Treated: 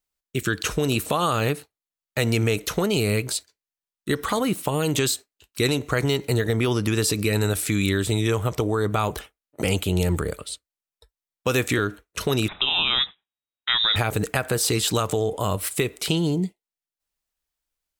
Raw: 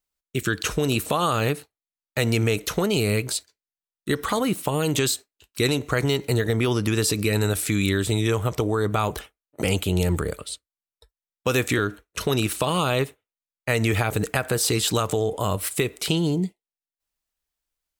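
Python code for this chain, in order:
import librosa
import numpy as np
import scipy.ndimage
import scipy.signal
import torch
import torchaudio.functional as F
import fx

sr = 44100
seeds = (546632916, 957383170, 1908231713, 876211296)

y = fx.freq_invert(x, sr, carrier_hz=3800, at=(12.48, 13.96))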